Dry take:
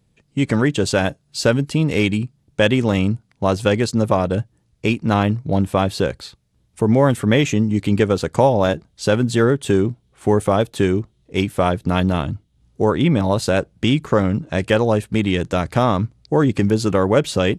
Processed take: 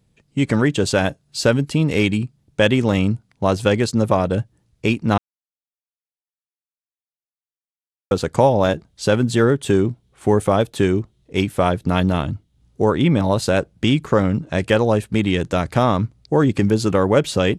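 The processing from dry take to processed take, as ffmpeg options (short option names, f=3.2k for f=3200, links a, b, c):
-filter_complex "[0:a]asplit=3[a][b][c];[a]atrim=end=5.18,asetpts=PTS-STARTPTS,afade=t=out:st=5.176:d=0.004:c=hsin[d];[b]atrim=start=5.18:end=8.11,asetpts=PTS-STARTPTS,volume=0[e];[c]atrim=start=8.11,asetpts=PTS-STARTPTS,afade=t=in:d=0.004:c=hsin[f];[d][e][f]concat=n=3:v=0:a=1"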